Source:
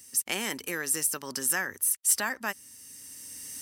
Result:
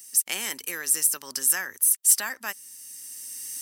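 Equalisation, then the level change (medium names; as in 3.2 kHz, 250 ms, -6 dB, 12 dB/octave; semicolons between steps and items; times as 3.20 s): tilt EQ +2.5 dB/octave; -2.5 dB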